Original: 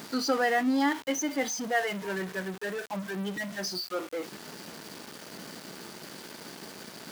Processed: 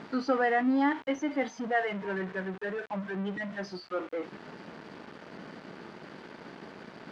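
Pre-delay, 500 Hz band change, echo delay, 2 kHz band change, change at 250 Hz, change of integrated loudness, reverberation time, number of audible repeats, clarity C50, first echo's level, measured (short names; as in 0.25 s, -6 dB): none, 0.0 dB, none, -1.5 dB, 0.0 dB, -1.0 dB, none, none, none, none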